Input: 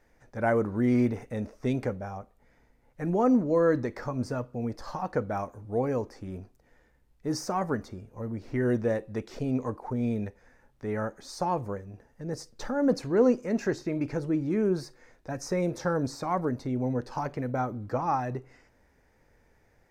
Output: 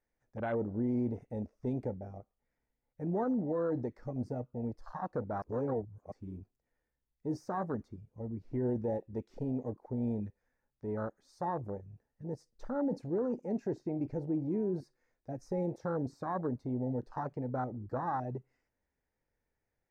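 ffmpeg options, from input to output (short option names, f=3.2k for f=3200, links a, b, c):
-filter_complex "[0:a]asplit=3[a][b][c];[a]atrim=end=5.422[d];[b]atrim=start=5.418:end=6.122,asetpts=PTS-STARTPTS,areverse[e];[c]atrim=start=6.118[f];[d][e]acrossfade=d=0.004:c1=hsin:c2=hsin[g];[g][f]acrossfade=d=0.004:c1=hsin:c2=hsin,afwtdn=0.0316,alimiter=limit=-21dB:level=0:latency=1:release=14,volume=-5dB"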